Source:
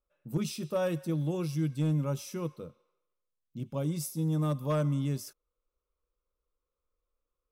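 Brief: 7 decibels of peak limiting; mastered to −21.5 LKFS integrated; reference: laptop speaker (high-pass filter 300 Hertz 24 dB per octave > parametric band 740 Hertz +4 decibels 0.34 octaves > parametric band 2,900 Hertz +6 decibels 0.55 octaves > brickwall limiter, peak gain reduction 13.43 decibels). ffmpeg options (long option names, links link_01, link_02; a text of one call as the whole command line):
ffmpeg -i in.wav -af "alimiter=level_in=5dB:limit=-24dB:level=0:latency=1,volume=-5dB,highpass=frequency=300:width=0.5412,highpass=frequency=300:width=1.3066,equalizer=frequency=740:width_type=o:width=0.34:gain=4,equalizer=frequency=2900:width_type=o:width=0.55:gain=6,volume=27dB,alimiter=limit=-13.5dB:level=0:latency=1" out.wav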